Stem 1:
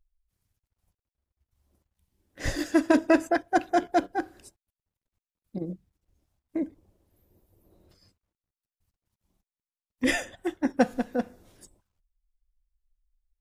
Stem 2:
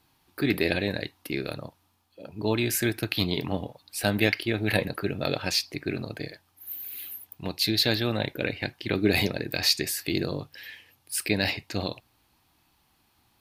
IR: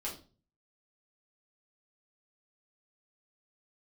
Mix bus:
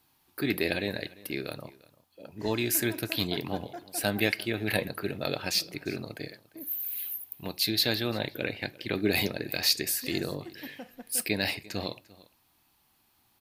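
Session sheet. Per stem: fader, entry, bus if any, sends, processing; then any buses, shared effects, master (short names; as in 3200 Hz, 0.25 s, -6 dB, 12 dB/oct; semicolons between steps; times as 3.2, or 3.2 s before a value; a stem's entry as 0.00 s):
-16.0 dB, 0.00 s, no send, no echo send, limiter -16.5 dBFS, peak gain reduction 8 dB
-3.5 dB, 0.00 s, send -21.5 dB, echo send -21 dB, high shelf 11000 Hz +10 dB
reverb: on, RT60 0.35 s, pre-delay 5 ms
echo: echo 0.347 s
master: low shelf 110 Hz -6 dB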